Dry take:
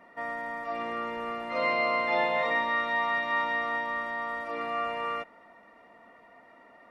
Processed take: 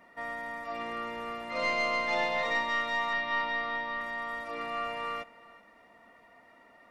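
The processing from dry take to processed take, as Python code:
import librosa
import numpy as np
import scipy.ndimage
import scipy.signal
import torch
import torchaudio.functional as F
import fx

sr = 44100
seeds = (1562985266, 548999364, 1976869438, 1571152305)

y = fx.tracing_dist(x, sr, depth_ms=0.023)
y = fx.low_shelf(y, sr, hz=130.0, db=8.0)
y = fx.steep_lowpass(y, sr, hz=5200.0, slope=36, at=(3.13, 4.01))
y = fx.high_shelf(y, sr, hz=2500.0, db=9.5)
y = y + 10.0 ** (-22.0 / 20.0) * np.pad(y, (int(386 * sr / 1000.0), 0))[:len(y)]
y = y * librosa.db_to_amplitude(-5.0)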